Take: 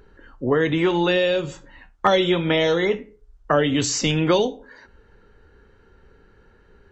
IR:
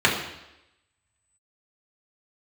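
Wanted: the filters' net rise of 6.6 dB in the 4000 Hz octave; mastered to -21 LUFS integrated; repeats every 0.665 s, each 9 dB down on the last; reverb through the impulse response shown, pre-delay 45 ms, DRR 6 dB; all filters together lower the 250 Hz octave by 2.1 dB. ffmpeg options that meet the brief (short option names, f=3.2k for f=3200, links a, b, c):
-filter_complex "[0:a]equalizer=f=250:t=o:g=-3.5,equalizer=f=4k:t=o:g=8.5,aecho=1:1:665|1330|1995|2660:0.355|0.124|0.0435|0.0152,asplit=2[a][b];[1:a]atrim=start_sample=2205,adelay=45[c];[b][c]afir=irnorm=-1:irlink=0,volume=-25.5dB[d];[a][d]amix=inputs=2:normalize=0,volume=-1.5dB"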